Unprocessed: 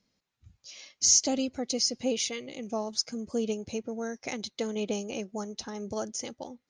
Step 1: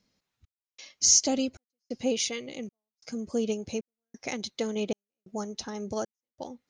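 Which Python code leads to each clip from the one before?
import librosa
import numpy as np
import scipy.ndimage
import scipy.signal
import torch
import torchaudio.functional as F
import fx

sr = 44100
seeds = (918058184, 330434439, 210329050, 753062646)

y = fx.step_gate(x, sr, bpm=134, pattern='xxxx...xxx', floor_db=-60.0, edge_ms=4.5)
y = y * 10.0 ** (1.5 / 20.0)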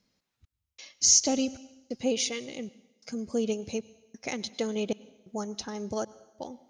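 y = fx.rev_plate(x, sr, seeds[0], rt60_s=0.97, hf_ratio=1.0, predelay_ms=85, drr_db=19.5)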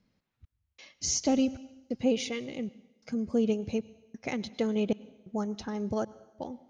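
y = fx.bass_treble(x, sr, bass_db=6, treble_db=-12)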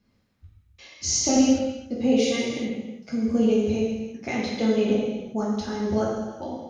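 y = fx.rev_gated(x, sr, seeds[1], gate_ms=430, shape='falling', drr_db=-6.5)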